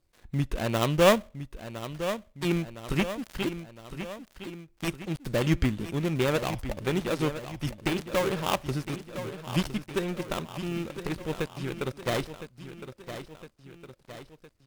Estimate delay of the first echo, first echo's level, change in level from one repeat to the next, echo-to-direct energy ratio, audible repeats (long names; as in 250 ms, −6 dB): 1,011 ms, −11.0 dB, −5.0 dB, −9.5 dB, 3